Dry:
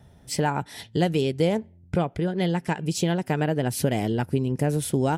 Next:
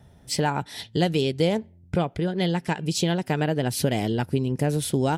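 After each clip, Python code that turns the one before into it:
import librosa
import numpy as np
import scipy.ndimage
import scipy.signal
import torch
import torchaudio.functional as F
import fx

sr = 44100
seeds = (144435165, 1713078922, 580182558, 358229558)

y = fx.dynamic_eq(x, sr, hz=4000.0, q=1.4, threshold_db=-50.0, ratio=4.0, max_db=6)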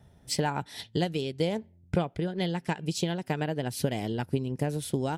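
y = fx.transient(x, sr, attack_db=4, sustain_db=-1)
y = fx.rider(y, sr, range_db=10, speed_s=0.5)
y = y * librosa.db_to_amplitude(-7.0)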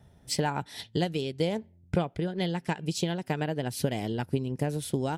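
y = x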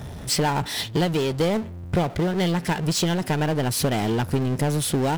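y = fx.power_curve(x, sr, exponent=0.5)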